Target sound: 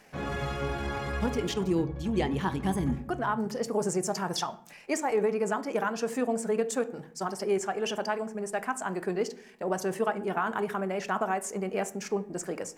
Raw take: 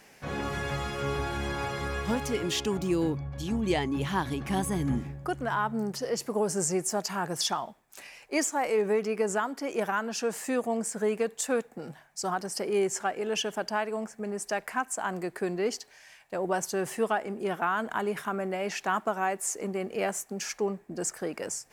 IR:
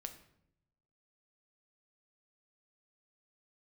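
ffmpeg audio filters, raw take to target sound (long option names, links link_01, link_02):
-filter_complex "[0:a]atempo=1.7,asplit=2[link_01][link_02];[1:a]atrim=start_sample=2205,asetrate=61740,aresample=44100,highshelf=frequency=3900:gain=-11.5[link_03];[link_02][link_03]afir=irnorm=-1:irlink=0,volume=9.5dB[link_04];[link_01][link_04]amix=inputs=2:normalize=0,volume=-7dB"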